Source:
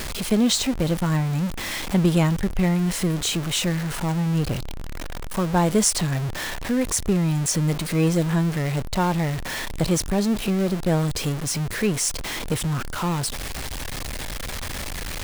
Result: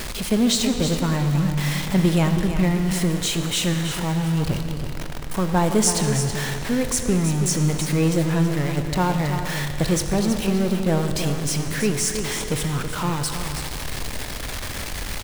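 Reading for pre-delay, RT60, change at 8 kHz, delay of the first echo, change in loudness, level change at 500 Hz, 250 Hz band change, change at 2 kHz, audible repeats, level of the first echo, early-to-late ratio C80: 21 ms, 2.8 s, +1.0 dB, 325 ms, +1.0 dB, +1.5 dB, +1.0 dB, +1.0 dB, 1, -9.0 dB, 5.5 dB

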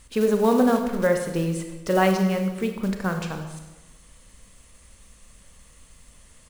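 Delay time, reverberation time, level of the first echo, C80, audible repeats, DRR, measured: 96 ms, 1.1 s, -15.0 dB, 8.5 dB, 1, 5.0 dB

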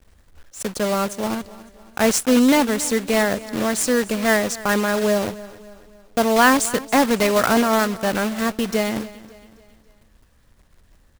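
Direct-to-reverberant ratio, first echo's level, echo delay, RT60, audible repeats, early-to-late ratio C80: no reverb, -18.5 dB, 278 ms, no reverb, 3, no reverb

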